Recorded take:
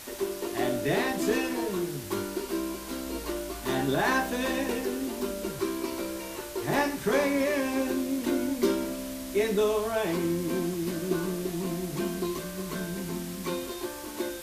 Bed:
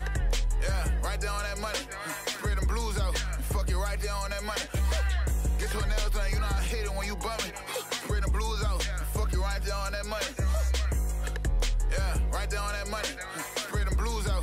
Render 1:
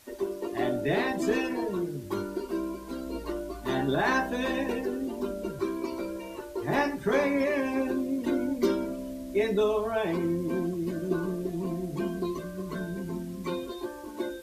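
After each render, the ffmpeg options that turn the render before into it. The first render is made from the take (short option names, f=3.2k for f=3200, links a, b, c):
-af "afftdn=nr=13:nf=-39"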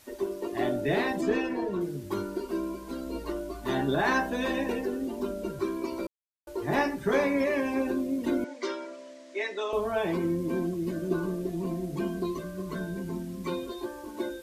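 -filter_complex "[0:a]asettb=1/sr,asplit=3[a][b][c];[a]atrim=end=1.214[d];[b]atrim=start=1.21:end=1.81,asetpts=PTS-STARTPTS,afade=t=in:d=0.004:c=qsin,afade=t=out:st=0.596:d=0.004:c=qsin,lowpass=f=3.2k:p=1[e];[c]atrim=start=1.806[f];[d][e]acrossfade=d=0.004:c1=hsin:c2=qsin[g];[g][f]acrossfade=d=0.004:c1=qsin:c2=hsin,asettb=1/sr,asplit=3[h][i][j];[h]atrim=end=8.444[k];[i]atrim=start=8.44:end=9.73,asetpts=PTS-STARTPTS,afade=t=in:d=0.004:c=qsin,afade=t=out:st=1.286:d=0.004:c=qsin,highpass=f=410:w=0.5412,highpass=f=410:w=1.3066,equalizer=f=450:t=q:w=4:g=-8,equalizer=f=680:t=q:w=4:g=-4,equalizer=f=1.9k:t=q:w=4:g=5,lowpass=f=7.2k:w=0.5412,lowpass=f=7.2k:w=1.3066[l];[j]atrim=start=9.726[m];[k][l]acrossfade=d=0.004:c1=hsin:c2=qsin[n];[n][m]acrossfade=d=0.004:c1=qsin:c2=hsin,asplit=3[o][p][q];[o]atrim=end=6.07,asetpts=PTS-STARTPTS,afade=t=out:st=6.066:d=0.004:c=hsin[r];[p]atrim=start=6.07:end=6.47,asetpts=PTS-STARTPTS,volume=0[s];[q]atrim=start=6.47,asetpts=PTS-STARTPTS,afade=t=in:d=0.004:c=hsin[t];[r][s][t]concat=n=3:v=0:a=1"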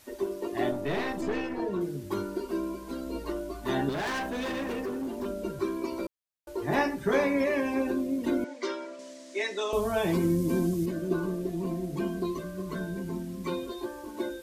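-filter_complex "[0:a]asettb=1/sr,asplit=3[a][b][c];[a]atrim=end=0.714[d];[b]atrim=start=0.71:end=1.6,asetpts=PTS-STARTPTS,afade=t=in:d=0.004:c=qsin,afade=t=out:st=0.886:d=0.004:c=qsin,aeval=exprs='(tanh(15.8*val(0)+0.55)-tanh(0.55))/15.8':c=same[e];[c]atrim=start=1.596[f];[d][e]acrossfade=d=0.004:c1=hsin:c2=qsin[g];[g][f]acrossfade=d=0.004:c1=qsin:c2=hsin,asettb=1/sr,asplit=3[h][i][j];[h]atrim=end=3.894[k];[i]atrim=start=3.89:end=5.26,asetpts=PTS-STARTPTS,afade=t=in:d=0.004:c=qsin,afade=t=out:st=1.366:d=0.004:c=qsin,asoftclip=type=hard:threshold=-29.5dB[l];[j]atrim=start=5.256[m];[k][l]acrossfade=d=0.004:c1=hsin:c2=qsin[n];[n][m]acrossfade=d=0.004:c1=qsin:c2=hsin,asettb=1/sr,asplit=3[o][p][q];[o]atrim=end=8.994[r];[p]atrim=start=8.99:end=10.86,asetpts=PTS-STARTPTS,afade=t=in:d=0.004:c=qsin,afade=t=out:st=1.866:d=0.004:c=qsin,bass=f=250:g=7,treble=f=4k:g=10[s];[q]atrim=start=10.856[t];[r][s]acrossfade=d=0.004:c1=hsin:c2=qsin[u];[u][t]acrossfade=d=0.004:c1=qsin:c2=hsin"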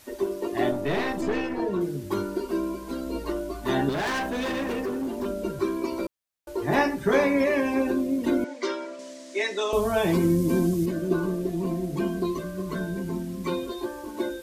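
-af "volume=4dB"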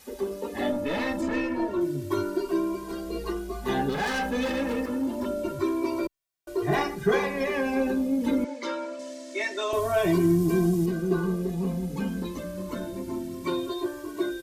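-filter_complex "[0:a]asplit=2[a][b];[b]asoftclip=type=tanh:threshold=-26dB,volume=-6.5dB[c];[a][c]amix=inputs=2:normalize=0,asplit=2[d][e];[e]adelay=2,afreqshift=0.26[f];[d][f]amix=inputs=2:normalize=1"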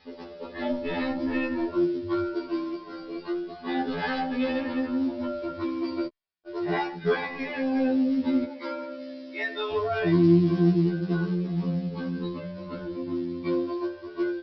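-af "aresample=11025,acrusher=bits=6:mode=log:mix=0:aa=0.000001,aresample=44100,afftfilt=real='re*2*eq(mod(b,4),0)':imag='im*2*eq(mod(b,4),0)':win_size=2048:overlap=0.75"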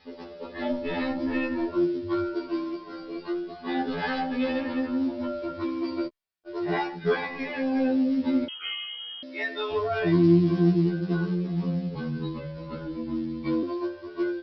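-filter_complex "[0:a]asettb=1/sr,asplit=3[a][b][c];[a]atrim=end=8.484[d];[b]atrim=start=8.48:end=9.23,asetpts=PTS-STARTPTS,afade=t=in:d=0.004:c=qsin,afade=t=out:st=0.746:d=0.004:c=qsin,lowpass=f=3k:t=q:w=0.5098,lowpass=f=3k:t=q:w=0.6013,lowpass=f=3k:t=q:w=0.9,lowpass=f=3k:t=q:w=2.563,afreqshift=-3500[e];[c]atrim=start=9.226[f];[d][e]acrossfade=d=0.004:c1=hsin:c2=qsin[g];[g][f]acrossfade=d=0.004:c1=qsin:c2=hsin,asettb=1/sr,asplit=3[h][i][j];[h]atrim=end=11.954[k];[i]atrim=start=11.95:end=13.63,asetpts=PTS-STARTPTS,afade=t=in:d=0.004:c=qsin,afade=t=out:st=1.676:d=0.004:c=qsin,afreqshift=-26[l];[j]atrim=start=13.626[m];[k][l]acrossfade=d=0.004:c1=hsin:c2=qsin[n];[n][m]acrossfade=d=0.004:c1=qsin:c2=hsin"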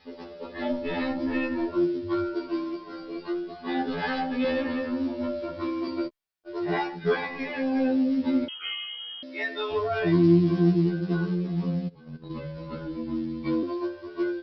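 -filter_complex "[0:a]asettb=1/sr,asplit=3[a][b][c];[a]atrim=end=4.424[d];[b]atrim=start=4.42:end=5.88,asetpts=PTS-STARTPTS,afade=t=in:d=0.004:c=qsin,afade=t=out:st=1.456:d=0.004:c=qsin,asplit=2[e][f];[f]adelay=25,volume=-4.5dB[g];[e][g]amix=inputs=2:normalize=0,atrim=end_sample=64386[h];[c]atrim=start=5.876[i];[d][h]acrossfade=d=0.004:c1=hsin:c2=qsin[j];[j][i]acrossfade=d=0.004:c1=qsin:c2=hsin,asplit=3[k][l][m];[k]afade=t=out:st=11.87:d=0.02[n];[l]agate=range=-18dB:threshold=-29dB:ratio=16:release=100:detection=peak,afade=t=in:st=11.87:d=0.02,afade=t=out:st=12.29:d=0.02[o];[m]afade=t=in:st=12.29:d=0.02[p];[n][o][p]amix=inputs=3:normalize=0"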